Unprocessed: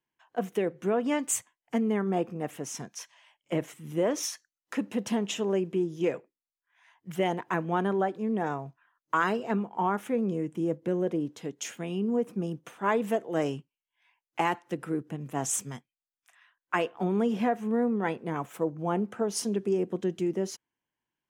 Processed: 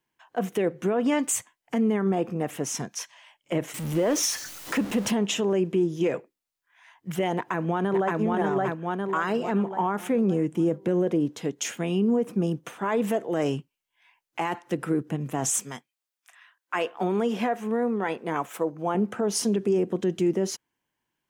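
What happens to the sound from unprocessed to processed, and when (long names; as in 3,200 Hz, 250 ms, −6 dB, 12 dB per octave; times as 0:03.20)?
0:03.74–0:05.11: converter with a step at zero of −38.5 dBFS
0:07.36–0:08.16: delay throw 570 ms, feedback 40%, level −1 dB
0:15.60–0:18.95: high-pass filter 430 Hz 6 dB per octave
whole clip: brickwall limiter −23 dBFS; level +7 dB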